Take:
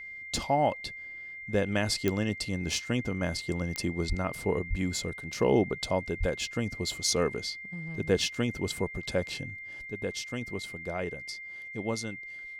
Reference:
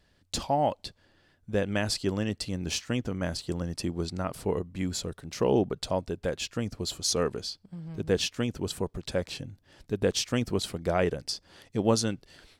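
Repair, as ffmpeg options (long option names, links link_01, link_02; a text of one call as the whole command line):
ffmpeg -i in.wav -filter_complex "[0:a]adeclick=threshold=4,bandreject=frequency=2100:width=30,asplit=3[link_01][link_02][link_03];[link_01]afade=type=out:start_time=4.08:duration=0.02[link_04];[link_02]highpass=frequency=140:width=0.5412,highpass=frequency=140:width=1.3066,afade=type=in:start_time=4.08:duration=0.02,afade=type=out:start_time=4.2:duration=0.02[link_05];[link_03]afade=type=in:start_time=4.2:duration=0.02[link_06];[link_04][link_05][link_06]amix=inputs=3:normalize=0,asplit=3[link_07][link_08][link_09];[link_07]afade=type=out:start_time=4.69:duration=0.02[link_10];[link_08]highpass=frequency=140:width=0.5412,highpass=frequency=140:width=1.3066,afade=type=in:start_time=4.69:duration=0.02,afade=type=out:start_time=4.81:duration=0.02[link_11];[link_09]afade=type=in:start_time=4.81:duration=0.02[link_12];[link_10][link_11][link_12]amix=inputs=3:normalize=0,asplit=3[link_13][link_14][link_15];[link_13]afade=type=out:start_time=6.19:duration=0.02[link_16];[link_14]highpass=frequency=140:width=0.5412,highpass=frequency=140:width=1.3066,afade=type=in:start_time=6.19:duration=0.02,afade=type=out:start_time=6.31:duration=0.02[link_17];[link_15]afade=type=in:start_time=6.31:duration=0.02[link_18];[link_16][link_17][link_18]amix=inputs=3:normalize=0,asetnsamples=nb_out_samples=441:pad=0,asendcmd='9.87 volume volume 8.5dB',volume=0dB" out.wav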